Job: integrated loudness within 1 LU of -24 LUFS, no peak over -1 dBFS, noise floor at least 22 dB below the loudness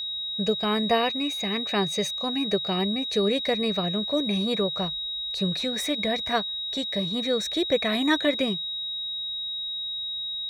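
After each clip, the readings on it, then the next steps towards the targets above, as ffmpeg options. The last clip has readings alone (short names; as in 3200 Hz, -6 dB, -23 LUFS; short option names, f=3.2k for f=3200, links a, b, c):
steady tone 3800 Hz; tone level -29 dBFS; loudness -25.5 LUFS; peak -10.5 dBFS; loudness target -24.0 LUFS
-> -af "bandreject=f=3.8k:w=30"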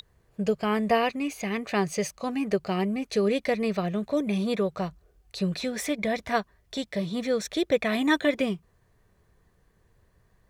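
steady tone none; loudness -27.5 LUFS; peak -10.5 dBFS; loudness target -24.0 LUFS
-> -af "volume=3.5dB"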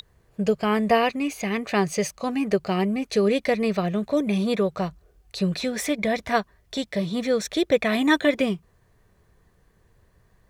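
loudness -24.0 LUFS; peak -7.0 dBFS; noise floor -62 dBFS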